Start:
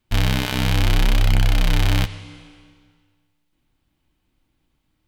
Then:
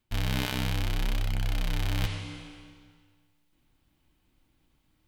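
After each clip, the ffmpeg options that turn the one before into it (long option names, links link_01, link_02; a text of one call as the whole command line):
ffmpeg -i in.wav -af "areverse,acompressor=threshold=-25dB:ratio=6,areverse,highshelf=frequency=10000:gain=3" out.wav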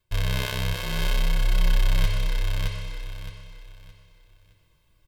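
ffmpeg -i in.wav -filter_complex "[0:a]aecho=1:1:1.9:0.88,asplit=2[link_01][link_02];[link_02]aecho=0:1:617|1234|1851|2468:0.708|0.212|0.0637|0.0191[link_03];[link_01][link_03]amix=inputs=2:normalize=0" out.wav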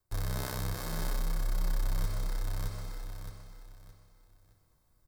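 ffmpeg -i in.wav -filter_complex "[0:a]acrossover=split=200|1600|4400[link_01][link_02][link_03][link_04];[link_03]acrusher=samples=13:mix=1:aa=0.000001[link_05];[link_01][link_02][link_05][link_04]amix=inputs=4:normalize=0,acompressor=threshold=-27dB:ratio=1.5,highshelf=frequency=4600:gain=5.5,volume=-6dB" out.wav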